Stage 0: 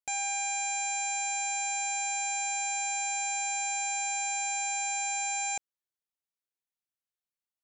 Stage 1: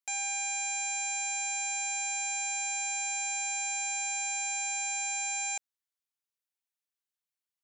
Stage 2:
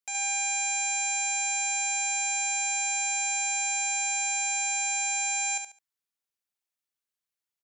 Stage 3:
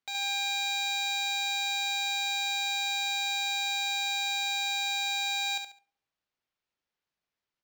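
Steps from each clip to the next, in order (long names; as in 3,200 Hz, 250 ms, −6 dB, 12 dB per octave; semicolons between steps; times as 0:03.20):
high-pass filter 1,200 Hz 6 dB per octave
repeating echo 70 ms, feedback 26%, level −5.5 dB
convolution reverb RT60 0.70 s, pre-delay 7 ms, DRR 17 dB; linearly interpolated sample-rate reduction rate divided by 4×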